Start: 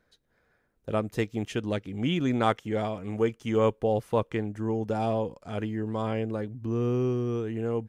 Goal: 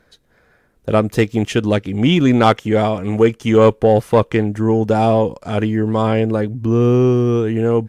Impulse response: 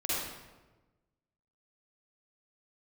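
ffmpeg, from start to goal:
-af "aeval=exprs='0.316*sin(PI/2*1.41*val(0)/0.316)':channel_layout=same,volume=7dB" -ar 32000 -c:a aac -b:a 96k

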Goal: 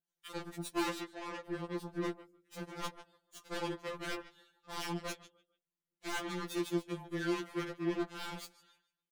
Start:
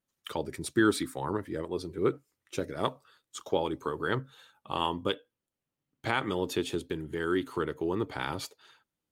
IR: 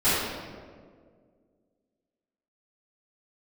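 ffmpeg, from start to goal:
-filter_complex "[0:a]asettb=1/sr,asplit=3[link_01][link_02][link_03];[link_01]atrim=end=2.064[link_04];[link_02]atrim=start=2.06:end=2.7,asetpts=PTS-STARTPTS,afade=type=in:duration=0.004:curve=qsin,afade=type=out:start_time=0.636:duration=0.004:curve=qsin,equalizer=frequency=710:width=0.65:gain=-4.5[link_05];[link_03]atrim=start=2.696[link_06];[link_04][link_05]acrossfade=duration=0.004:curve1=hsin:curve2=qsin[link_07];[link_07][link_06]acrossfade=duration=0.004:curve1=qsin:curve2=hsin,aecho=1:1:148|296|444:0.158|0.0412|0.0107,aeval=exprs='0.0596*(abs(mod(val(0)/0.0596+3,4)-2)-1)':channel_layout=same,asettb=1/sr,asplit=3[link_08][link_09][link_10];[link_08]atrim=end=0.904[link_11];[link_09]atrim=start=0.9:end=1.46,asetpts=PTS-STARTPTS,afade=type=in:duration=0.004:curve=qsin,afade=type=out:start_time=0.556:duration=0.004:curve=qsin,highpass=310,lowpass=4400[link_12];[link_10]atrim=start=1.456[link_13];[link_11][link_12]acrossfade=duration=0.004:curve1=hsin:curve2=qsin[link_14];[link_14][link_13]acrossfade=duration=0.004:curve1=qsin:curve2=hsin,asoftclip=type=tanh:threshold=-31.5dB,aeval=exprs='0.0266*(cos(1*acos(clip(val(0)/0.0266,-1,1)))-cos(1*PI/2))+0.0119*(cos(3*acos(clip(val(0)/0.0266,-1,1)))-cos(3*PI/2))+0.000335*(cos(4*acos(clip(val(0)/0.0266,-1,1)))-cos(4*PI/2))':channel_layout=same,afftfilt=real='re*2.83*eq(mod(b,8),0)':imag='im*2.83*eq(mod(b,8),0)':win_size=2048:overlap=0.75,volume=1.5dB"

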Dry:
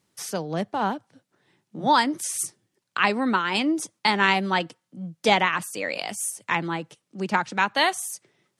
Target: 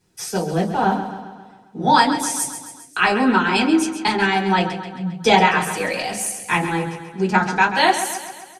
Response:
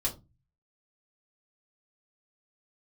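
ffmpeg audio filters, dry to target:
-filter_complex "[0:a]asettb=1/sr,asplit=3[link_01][link_02][link_03];[link_01]atrim=end=4.064[link_04];[link_02]atrim=start=4.06:end=4.58,asetpts=PTS-STARTPTS,afade=type=in:duration=0.004:curve=qsin,afade=type=out:start_time=0.516:duration=0.004:curve=qsin,acompressor=threshold=-22dB:ratio=2.5[link_05];[link_03]atrim=start=4.576[link_06];[link_04][link_05]acrossfade=duration=0.004:curve1=hsin:curve2=qsin[link_07];[link_07][link_06]acrossfade=duration=0.004:curve1=qsin:curve2=hsin,aecho=1:1:134|268|402|536|670|804:0.299|0.167|0.0936|0.0524|0.0294|0.0164[link_08];[1:a]atrim=start_sample=2205,asetrate=61740,aresample=44100[link_09];[link_08][link_09]afir=irnorm=-1:irlink=0,volume=3dB"

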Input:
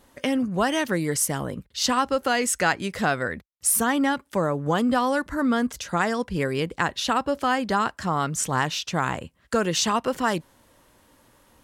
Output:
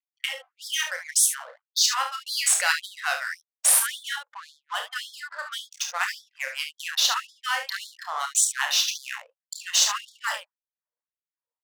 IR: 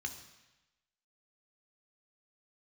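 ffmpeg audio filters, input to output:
-filter_complex "[0:a]aeval=exprs='if(lt(val(0),0),0.708*val(0),val(0))':channel_layout=same,afftdn=noise_reduction=25:noise_floor=-37,equalizer=frequency=350:width_type=o:width=2.9:gain=-13,bandreject=frequency=60:width_type=h:width=6,bandreject=frequency=120:width_type=h:width=6,bandreject=frequency=180:width_type=h:width=6,acrossover=split=130|470|2600[link_01][link_02][link_03][link_04];[link_04]alimiter=limit=-21.5dB:level=0:latency=1:release=149[link_05];[link_01][link_02][link_03][link_05]amix=inputs=4:normalize=0,crystalizer=i=4.5:c=0,adynamicsmooth=sensitivity=7.5:basefreq=700,aeval=exprs='val(0)+0.00501*(sin(2*PI*60*n/s)+sin(2*PI*2*60*n/s)/2+sin(2*PI*3*60*n/s)/3+sin(2*PI*4*60*n/s)/4+sin(2*PI*5*60*n/s)/5)':channel_layout=same,aecho=1:1:30|52|71:0.473|0.266|0.355,afftfilt=real='re*gte(b*sr/1024,450*pow(3300/450,0.5+0.5*sin(2*PI*1.8*pts/sr)))':imag='im*gte(b*sr/1024,450*pow(3300/450,0.5+0.5*sin(2*PI*1.8*pts/sr)))':win_size=1024:overlap=0.75"

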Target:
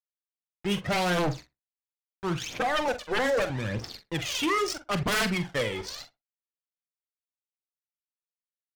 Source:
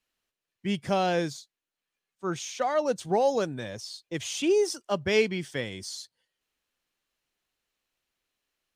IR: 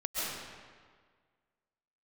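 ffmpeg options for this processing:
-filter_complex "[0:a]asettb=1/sr,asplit=3[link_01][link_02][link_03];[link_01]atrim=end=2.884[link_04];[link_02]atrim=start=2.88:end=3.5,asetpts=PTS-STARTPTS,afade=type=in:duration=0.004:curve=qsin,afade=type=out:start_time=0.616:duration=0.004:curve=qsin,highpass=360[link_05];[link_03]atrim=start=3.496[link_06];[link_04][link_05]acrossfade=duration=0.004:curve1=hsin:curve2=qsin[link_07];[link_07][link_06]acrossfade=duration=0.004:curve1=qsin:curve2=hsin,acrusher=bits=6:mix=0:aa=0.000001,adynamicsmooth=sensitivity=8:basefreq=1400,aphaser=in_gain=1:out_gain=1:delay=2.4:decay=0.67:speed=0.78:type=triangular,aeval=exprs='0.168*sin(PI/2*2.51*val(0)/0.168)':channel_layout=same,asplit=2[link_08][link_09];[link_09]adelay=45,volume=-11.5dB[link_10];[link_08][link_10]amix=inputs=2:normalize=0,asplit=2[link_11][link_12];[link_12]adelay=61,lowpass=frequency=1700:poles=1,volume=-17.5dB,asplit=2[link_13][link_14];[link_14]adelay=61,lowpass=frequency=1700:poles=1,volume=0.17[link_15];[link_13][link_15]amix=inputs=2:normalize=0[link_16];[link_11][link_16]amix=inputs=2:normalize=0,volume=-7dB"

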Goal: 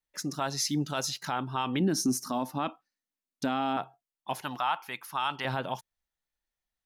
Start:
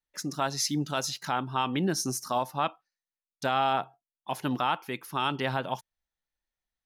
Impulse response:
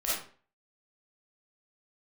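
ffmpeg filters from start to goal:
-filter_complex "[0:a]asettb=1/sr,asplit=3[link_01][link_02][link_03];[link_01]atrim=end=1.804[link_04];[link_02]atrim=start=1.8:end=3.77,asetpts=PTS-STARTPTS,afade=type=in:duration=0.004:curve=qsin,afade=type=out:start_time=1.966:duration=0.004:curve=qsin,equalizer=frequency=260:width_type=o:width=0.69:gain=13.5[link_05];[link_03]atrim=start=3.766[link_06];[link_04][link_05]acrossfade=duration=0.004:curve1=hsin:curve2=qsin[link_07];[link_07][link_06]acrossfade=duration=0.004:curve1=qsin:curve2=hsin,alimiter=limit=-19dB:level=0:latency=1:release=29,asettb=1/sr,asplit=3[link_08][link_09][link_10];[link_08]atrim=end=4.414[link_11];[link_09]atrim=start=4.41:end=5.45,asetpts=PTS-STARTPTS,afade=type=in:duration=0.004:curve=qsin,afade=type=out:start_time=1.036:duration=0.004:curve=qsin,lowshelf=frequency=570:width_type=q:width=1.5:gain=-9.5[link_12];[link_10]atrim=start=5.446[link_13];[link_11][link_12]acrossfade=duration=0.004:curve1=hsin:curve2=qsin[link_14];[link_14][link_13]acrossfade=duration=0.004:curve1=qsin:curve2=hsin"

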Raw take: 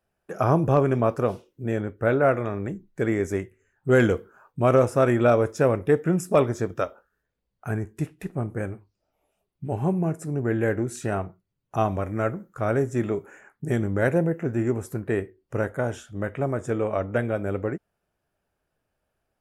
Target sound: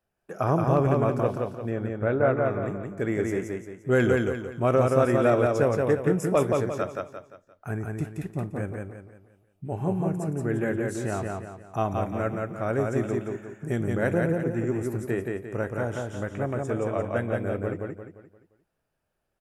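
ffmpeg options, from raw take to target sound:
ffmpeg -i in.wav -filter_complex "[0:a]asettb=1/sr,asplit=3[link_01][link_02][link_03];[link_01]atrim=end=1.694[link_04];[link_02]atrim=start=1.69:end=2.48,asetpts=PTS-STARTPTS,afade=type=in:duration=0.004:curve=qsin,afade=type=out:start_time=0.786:duration=0.004:curve=qsin,aemphasis=mode=reproduction:type=75kf[link_05];[link_03]atrim=start=2.476[link_06];[link_04][link_05]acrossfade=duration=0.004:curve1=hsin:curve2=qsin[link_07];[link_07][link_06]acrossfade=duration=0.004:curve1=qsin:curve2=hsin,asplit=2[link_08][link_09];[link_09]aecho=0:1:174|348|522|696|870:0.708|0.276|0.108|0.042|0.0164[link_10];[link_08][link_10]amix=inputs=2:normalize=0,volume=-3.5dB" out.wav

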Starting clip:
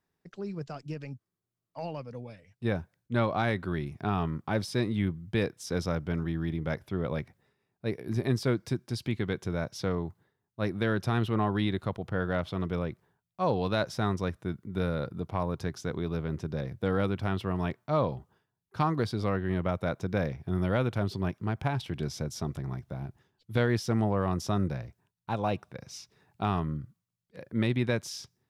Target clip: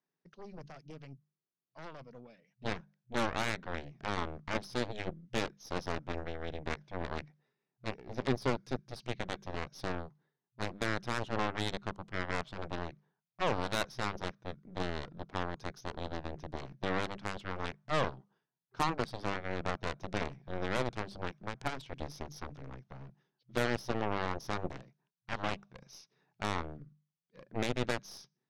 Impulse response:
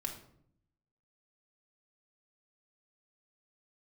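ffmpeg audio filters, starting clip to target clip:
-af "bandreject=frequency=50:width_type=h:width=6,bandreject=frequency=100:width_type=h:width=6,bandreject=frequency=150:width_type=h:width=6,bandreject=frequency=200:width_type=h:width=6,afftfilt=real='re*between(b*sr/4096,120,6600)':imag='im*between(b*sr/4096,120,6600)':win_size=4096:overlap=0.75,aeval=exprs='0.178*(cos(1*acos(clip(val(0)/0.178,-1,1)))-cos(1*PI/2))+0.0398*(cos(7*acos(clip(val(0)/0.178,-1,1)))-cos(7*PI/2))+0.0141*(cos(8*acos(clip(val(0)/0.178,-1,1)))-cos(8*PI/2))':channel_layout=same,volume=-3.5dB"

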